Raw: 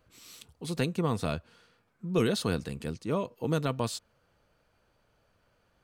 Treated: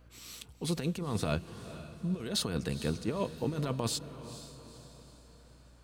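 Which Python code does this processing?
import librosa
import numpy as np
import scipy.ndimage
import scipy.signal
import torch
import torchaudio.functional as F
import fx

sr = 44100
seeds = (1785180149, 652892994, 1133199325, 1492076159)

y = fx.over_compress(x, sr, threshold_db=-31.0, ratio=-0.5)
y = fx.add_hum(y, sr, base_hz=60, snr_db=24)
y = fx.echo_diffused(y, sr, ms=465, feedback_pct=47, wet_db=-13)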